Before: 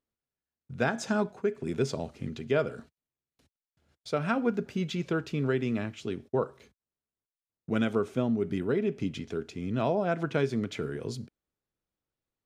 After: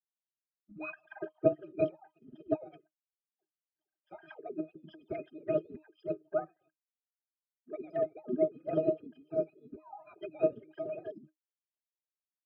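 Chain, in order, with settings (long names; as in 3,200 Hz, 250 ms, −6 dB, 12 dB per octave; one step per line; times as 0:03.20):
three sine waves on the formant tracks
resonances in every octave G, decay 0.11 s
phase-vocoder pitch shift with formants kept +8 semitones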